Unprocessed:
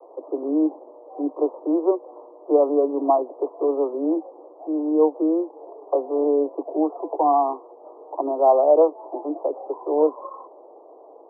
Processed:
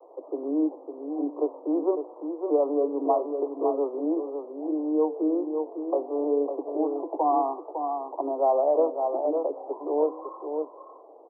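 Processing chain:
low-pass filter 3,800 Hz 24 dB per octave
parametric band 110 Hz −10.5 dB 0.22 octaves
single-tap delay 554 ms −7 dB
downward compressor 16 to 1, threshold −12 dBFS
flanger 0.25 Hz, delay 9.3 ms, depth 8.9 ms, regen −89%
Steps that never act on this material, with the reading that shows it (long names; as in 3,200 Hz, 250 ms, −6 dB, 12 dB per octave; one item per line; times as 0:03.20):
low-pass filter 3,800 Hz: nothing at its input above 1,200 Hz
parametric band 110 Hz: nothing at its input below 250 Hz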